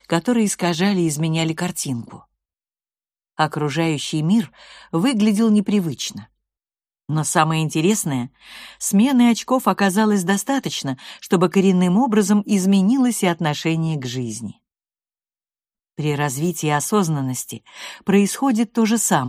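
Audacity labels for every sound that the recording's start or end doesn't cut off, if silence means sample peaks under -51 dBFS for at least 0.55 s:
3.370000	6.270000	sound
7.090000	14.570000	sound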